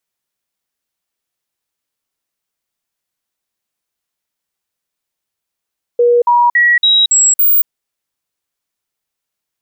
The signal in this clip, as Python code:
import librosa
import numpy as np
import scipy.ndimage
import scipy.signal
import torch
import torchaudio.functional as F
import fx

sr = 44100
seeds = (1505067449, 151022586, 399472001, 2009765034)

y = fx.stepped_sweep(sr, from_hz=480.0, direction='up', per_octave=1, tones=6, dwell_s=0.23, gap_s=0.05, level_db=-6.5)